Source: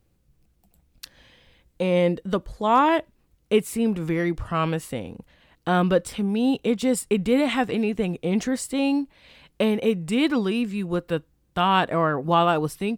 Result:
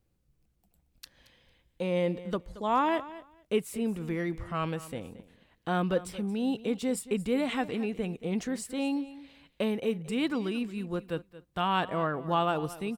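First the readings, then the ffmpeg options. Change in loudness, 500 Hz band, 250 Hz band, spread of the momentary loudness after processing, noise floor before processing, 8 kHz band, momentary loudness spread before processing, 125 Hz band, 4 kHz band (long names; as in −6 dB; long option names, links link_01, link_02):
−8.0 dB, −8.0 dB, −8.0 dB, 9 LU, −66 dBFS, −8.0 dB, 8 LU, −8.0 dB, −8.0 dB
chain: -af "aecho=1:1:226|452:0.15|0.0239,volume=-8dB"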